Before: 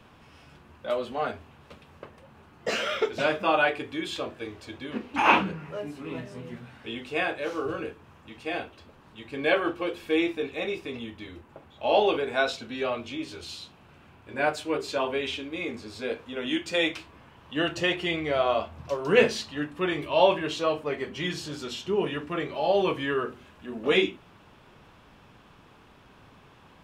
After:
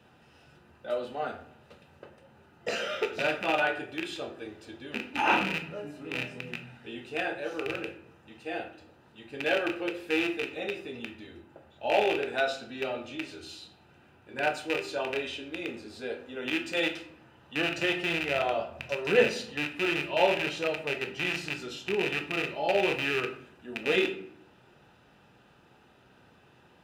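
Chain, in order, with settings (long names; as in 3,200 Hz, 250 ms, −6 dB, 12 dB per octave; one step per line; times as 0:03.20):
loose part that buzzes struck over −36 dBFS, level −13 dBFS
notch comb filter 1,100 Hz
on a send: low-shelf EQ 160 Hz −9.5 dB + convolution reverb RT60 0.65 s, pre-delay 3 ms, DRR 5 dB
on the sum: level −4.5 dB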